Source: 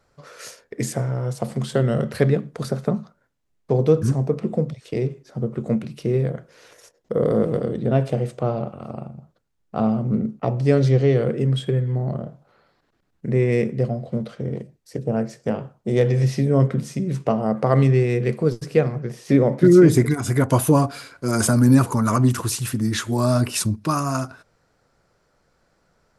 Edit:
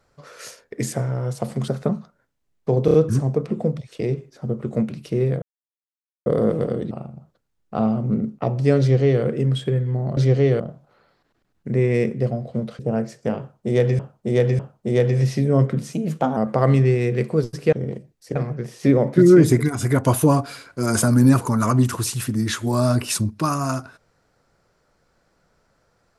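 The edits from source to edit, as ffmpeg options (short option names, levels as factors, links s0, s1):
-filter_complex "[0:a]asplit=17[s0][s1][s2][s3][s4][s5][s6][s7][s8][s9][s10][s11][s12][s13][s14][s15][s16];[s0]atrim=end=1.682[s17];[s1]atrim=start=2.698:end=3.902[s18];[s2]atrim=start=3.868:end=3.902[s19];[s3]atrim=start=3.868:end=3.902[s20];[s4]atrim=start=3.868:end=6.35,asetpts=PTS-STARTPTS,afade=t=out:st=2.478:d=0.004:c=hsin[s21];[s5]atrim=start=6.35:end=7.19,asetpts=PTS-STARTPTS,volume=0[s22];[s6]atrim=start=7.19:end=7.842,asetpts=PTS-STARTPTS,afade=t=in:d=0.004:c=hsin[s23];[s7]atrim=start=8.918:end=12.182[s24];[s8]atrim=start=10.808:end=11.242[s25];[s9]atrim=start=12.178:end=14.372[s26];[s10]atrim=start=14.998:end=16.202[s27];[s11]atrim=start=15.598:end=16.202[s28];[s12]atrim=start=15.598:end=16.944[s29];[s13]atrim=start=16.94:end=17.45,asetpts=PTS-STARTPTS,asetrate=51597,aresample=44100,atrim=end_sample=19223,asetpts=PTS-STARTPTS[s30];[s14]atrim=start=17.446:end=18.812[s31];[s15]atrim=start=14.368:end=15.002[s32];[s16]atrim=start=18.808[s33];[s17][s18]acrossfade=d=0.004:c1=hsin:c2=hsin[s34];[s34][s19]acrossfade=d=0.004:c1=hsin:c2=hsin[s35];[s35][s20]acrossfade=d=0.004:c1=hsin:c2=hsin[s36];[s21][s22][s23]concat=n=3:v=0:a=1[s37];[s36][s37]acrossfade=d=0.004:c1=hsin:c2=hsin[s38];[s38][s24]acrossfade=d=0.004:c1=hsin:c2=hsin[s39];[s39][s25]acrossfade=d=0.004:c1=hsin:c2=hsin[s40];[s40][s26]acrossfade=d=0.004:c1=hsin:c2=hsin[s41];[s41][s27]acrossfade=d=0.004:c1=hsin:c2=hsin[s42];[s42][s28]acrossfade=d=0.004:c1=hsin:c2=hsin[s43];[s43][s29]acrossfade=d=0.004:c1=hsin:c2=hsin[s44];[s44][s30]acrossfade=d=0.004:c1=hsin:c2=hsin[s45];[s45][s31]acrossfade=d=0.004:c1=hsin:c2=hsin[s46];[s46][s32]acrossfade=d=0.004:c1=hsin:c2=hsin[s47];[s47][s33]acrossfade=d=0.004:c1=hsin:c2=hsin"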